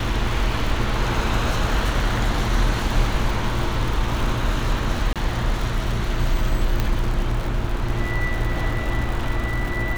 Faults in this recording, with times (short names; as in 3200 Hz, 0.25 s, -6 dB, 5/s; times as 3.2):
crackle 130/s -27 dBFS
5.13–5.16 gap 27 ms
6.8 pop -8 dBFS